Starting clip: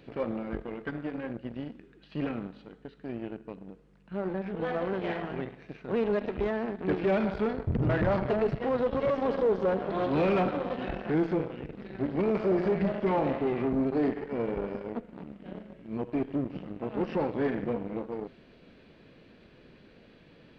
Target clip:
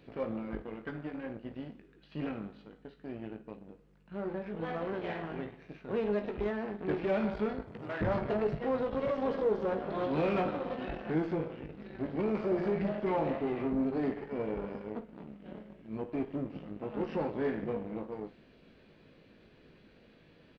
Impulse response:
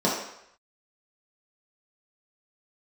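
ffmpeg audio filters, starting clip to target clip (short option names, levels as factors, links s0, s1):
-filter_complex "[0:a]asettb=1/sr,asplit=3[s0][s1][s2];[s0]atrim=end=7.614[s3];[s1]atrim=start=7.61:end=8.01,asetpts=PTS-STARTPTS,afade=t=in:d=0.004:c=qsin,afade=t=out:st=0.396:d=0.004:c=qsin,highpass=f=880:p=1[s4];[s2]atrim=start=8.006[s5];[s3][s4]acrossfade=d=0.004:c1=hsin:c2=qsin[s6];[s6][s5]acrossfade=d=0.004:c1=qsin:c2=hsin,aecho=1:1:19|54:0.422|0.2,volume=0.562"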